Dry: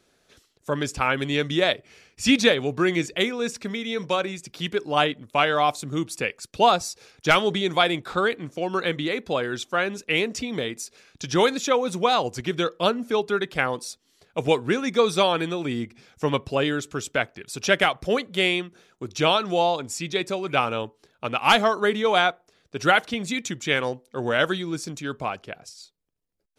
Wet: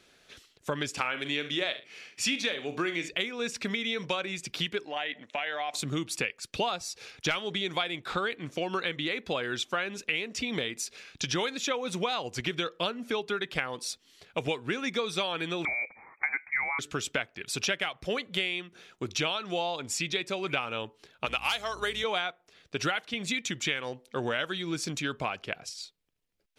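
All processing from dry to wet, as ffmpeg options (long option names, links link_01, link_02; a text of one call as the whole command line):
ffmpeg -i in.wav -filter_complex "[0:a]asettb=1/sr,asplit=3[link_01][link_02][link_03];[link_01]atrim=end=0.904[link_04];[link_02]atrim=start=0.9:end=3.09,asetpts=PTS-STARTPTS,afade=type=in:duration=0.004:curve=qsin,afade=type=out:start_time=2.186:duration=0.004:curve=qsin,highpass=190,asplit=2[link_05][link_06];[link_06]adelay=41,volume=-12dB[link_07];[link_05][link_07]amix=inputs=2:normalize=0,atrim=end_sample=96579,aecho=1:1:72:0.158,atrim=end_sample=96579[link_08];[link_03]atrim=start=3.086[link_09];[link_04][link_08]acrossfade=duration=0.004:curve1=hsin:curve2=qsin[link_10];[link_10][link_09]acrossfade=duration=0.004:curve1=qsin:curve2=hsin,asettb=1/sr,asplit=3[link_11][link_12][link_13];[link_11]atrim=end=4.854[link_14];[link_12]atrim=start=4.85:end=5.74,asetpts=PTS-STARTPTS,afade=type=in:duration=0.004:curve=qsin,afade=type=out:start_time=0.886:duration=0.004:curve=qsin,acompressor=threshold=-30dB:ratio=10:attack=3.2:release=140:knee=1:detection=peak,highpass=320,equalizer=frequency=380:width_type=q:width=4:gain=-6,equalizer=frequency=710:width_type=q:width=4:gain=5,equalizer=frequency=1200:width_type=q:width=4:gain=-7,equalizer=frequency=1900:width_type=q:width=4:gain=8,equalizer=frequency=4800:width_type=q:width=4:gain=-8,lowpass=frequency=6700:width=0.5412,lowpass=frequency=6700:width=1.3066[link_15];[link_13]atrim=start=5.736[link_16];[link_14][link_15]acrossfade=duration=0.004:curve1=hsin:curve2=qsin[link_17];[link_17][link_16]acrossfade=duration=0.004:curve1=qsin:curve2=hsin,asettb=1/sr,asplit=3[link_18][link_19][link_20];[link_18]atrim=end=15.654[link_21];[link_19]atrim=start=15.65:end=16.79,asetpts=PTS-STARTPTS,afade=type=in:duration=0.004:curve=qsin,afade=type=out:start_time=1.136:duration=0.004:curve=qsin,highpass=410,lowpass=frequency=2200:width_type=q:width=0.5098,lowpass=frequency=2200:width_type=q:width=0.6013,lowpass=frequency=2200:width_type=q:width=0.9,lowpass=frequency=2200:width_type=q:width=2.563,afreqshift=-2600,equalizer=frequency=800:width_type=o:width=0.42:gain=9.5[link_22];[link_20]atrim=start=16.786[link_23];[link_21][link_22]acrossfade=duration=0.004:curve1=hsin:curve2=qsin[link_24];[link_24][link_23]acrossfade=duration=0.004:curve1=qsin:curve2=hsin,asettb=1/sr,asplit=3[link_25][link_26][link_27];[link_25]atrim=end=21.264[link_28];[link_26]atrim=start=21.26:end=22.04,asetpts=PTS-STARTPTS,afade=type=in:duration=0.004:curve=qsin,afade=type=out:start_time=0.776:duration=0.004:curve=qsin,bass=frequency=250:gain=-14,treble=frequency=4000:gain=12,aeval=exprs='val(0)+0.0112*(sin(2*PI*60*n/s)+sin(2*PI*2*60*n/s)/2+sin(2*PI*3*60*n/s)/3+sin(2*PI*4*60*n/s)/4+sin(2*PI*5*60*n/s)/5)':channel_layout=same,aeval=exprs='0.708*(abs(mod(val(0)/0.708+3,4)-2)-1)':channel_layout=same[link_29];[link_27]atrim=start=22.036[link_30];[link_28][link_29]acrossfade=duration=0.004:curve1=hsin:curve2=qsin[link_31];[link_31][link_30]acrossfade=duration=0.004:curve1=qsin:curve2=hsin,equalizer=frequency=2700:width=0.77:gain=8,acompressor=threshold=-28dB:ratio=6" out.wav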